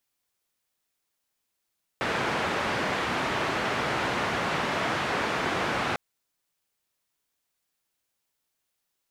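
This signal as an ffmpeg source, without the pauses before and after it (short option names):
-f lavfi -i "anoisesrc=c=white:d=3.95:r=44100:seed=1,highpass=f=94,lowpass=f=1700,volume=-12.3dB"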